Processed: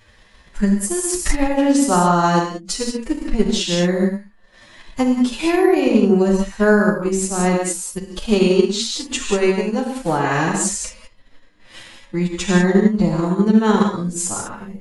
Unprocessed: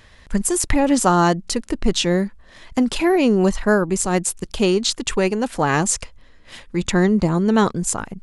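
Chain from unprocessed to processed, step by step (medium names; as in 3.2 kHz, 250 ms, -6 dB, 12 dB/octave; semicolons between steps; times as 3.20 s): time stretch by phase-locked vocoder 1.8×; gated-style reverb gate 220 ms flat, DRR -1 dB; transient shaper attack +5 dB, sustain -4 dB; trim -3.5 dB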